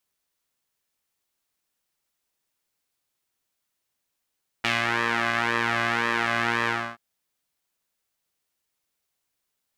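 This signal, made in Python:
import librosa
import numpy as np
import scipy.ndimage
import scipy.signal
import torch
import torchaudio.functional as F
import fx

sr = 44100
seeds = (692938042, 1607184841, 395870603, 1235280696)

y = fx.sub_patch_pwm(sr, seeds[0], note=46, wave2='saw', interval_st=0, detune_cents=16, level2_db=-9.0, sub_db=-15.0, noise_db=-30.0, kind='bandpass', cutoff_hz=1300.0, q=1.7, env_oct=1.0, env_decay_s=0.27, env_sustain_pct=40, attack_ms=7.0, decay_s=0.18, sustain_db=-3, release_s=0.29, note_s=2.04, lfo_hz=1.9, width_pct=21, width_swing_pct=5)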